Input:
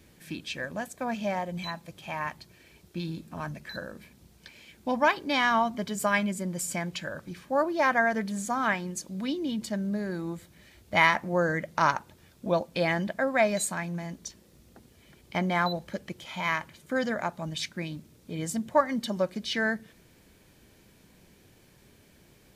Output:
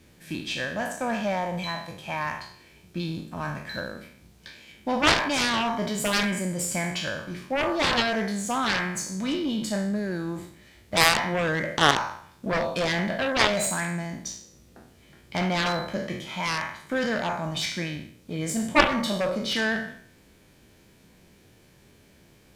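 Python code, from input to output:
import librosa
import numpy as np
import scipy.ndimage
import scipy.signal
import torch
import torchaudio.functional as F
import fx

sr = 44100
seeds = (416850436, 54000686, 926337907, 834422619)

p1 = fx.spec_trails(x, sr, decay_s=0.66)
p2 = np.sign(p1) * np.maximum(np.abs(p1) - 10.0 ** (-44.5 / 20.0), 0.0)
p3 = p1 + (p2 * 10.0 ** (-6.0 / 20.0))
p4 = fx.quant_dither(p3, sr, seeds[0], bits=12, dither='none')
p5 = fx.high_shelf(p4, sr, hz=11000.0, db=-5.5)
p6 = fx.cheby_harmonics(p5, sr, harmonics=(4, 7), levels_db=(-15, -10), full_scale_db=-2.0)
y = p6 * 10.0 ** (-1.5 / 20.0)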